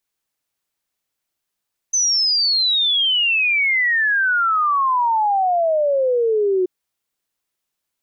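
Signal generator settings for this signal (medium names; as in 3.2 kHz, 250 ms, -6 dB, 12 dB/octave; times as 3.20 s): log sweep 6.2 kHz -> 360 Hz 4.73 s -14.5 dBFS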